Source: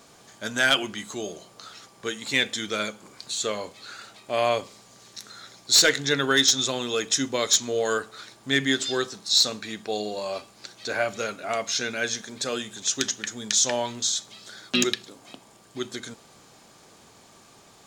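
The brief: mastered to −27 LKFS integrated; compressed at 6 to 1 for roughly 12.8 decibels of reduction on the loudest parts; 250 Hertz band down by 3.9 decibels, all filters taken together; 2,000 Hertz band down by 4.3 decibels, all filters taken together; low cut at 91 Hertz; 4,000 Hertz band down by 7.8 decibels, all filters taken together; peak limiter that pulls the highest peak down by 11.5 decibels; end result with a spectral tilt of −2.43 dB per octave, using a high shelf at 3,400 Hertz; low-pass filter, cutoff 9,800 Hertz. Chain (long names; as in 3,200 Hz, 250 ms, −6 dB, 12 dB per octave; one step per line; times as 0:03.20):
high-pass filter 91 Hz
low-pass filter 9,800 Hz
parametric band 250 Hz −4.5 dB
parametric band 2,000 Hz −3.5 dB
high-shelf EQ 3,400 Hz −4 dB
parametric band 4,000 Hz −5.5 dB
downward compressor 6 to 1, threshold −34 dBFS
level +13.5 dB
brickwall limiter −15.5 dBFS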